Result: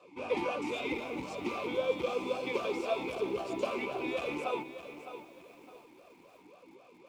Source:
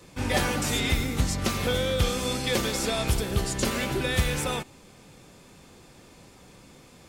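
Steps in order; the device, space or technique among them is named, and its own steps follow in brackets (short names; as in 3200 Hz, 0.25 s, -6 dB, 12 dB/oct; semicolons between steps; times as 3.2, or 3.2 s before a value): notches 50/100/150 Hz; talk box (tube stage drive 22 dB, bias 0.4; vowel sweep a-u 3.8 Hz); low shelf 81 Hz -7 dB; lo-fi delay 0.61 s, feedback 35%, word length 11-bit, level -11 dB; gain +8.5 dB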